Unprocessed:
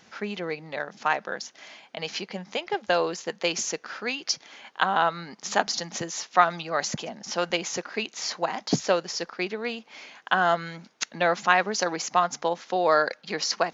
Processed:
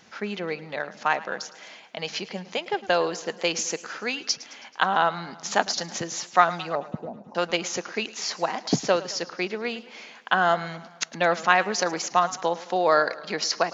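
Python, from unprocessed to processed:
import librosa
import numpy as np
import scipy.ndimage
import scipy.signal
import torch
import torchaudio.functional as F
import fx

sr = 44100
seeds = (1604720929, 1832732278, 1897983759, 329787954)

y = fx.ellip_lowpass(x, sr, hz=1000.0, order=4, stop_db=40, at=(6.75, 7.35))
y = fx.echo_warbled(y, sr, ms=108, feedback_pct=58, rate_hz=2.8, cents=75, wet_db=-18)
y = y * 10.0 ** (1.0 / 20.0)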